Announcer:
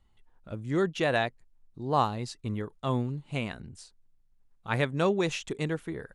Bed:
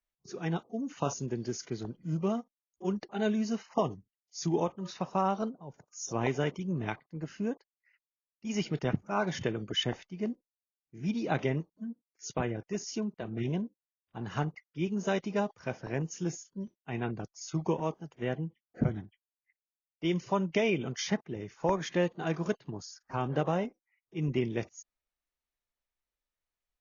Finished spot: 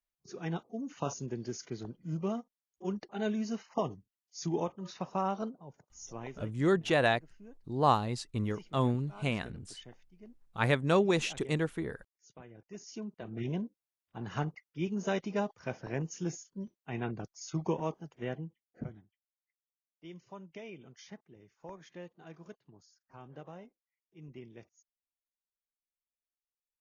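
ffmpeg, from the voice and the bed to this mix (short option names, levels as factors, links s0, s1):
-filter_complex "[0:a]adelay=5900,volume=1[s0];[1:a]volume=5.31,afade=t=out:st=5.61:d=0.83:silence=0.149624,afade=t=in:st=12.49:d=1.12:silence=0.125893,afade=t=out:st=18.01:d=1.01:silence=0.149624[s1];[s0][s1]amix=inputs=2:normalize=0"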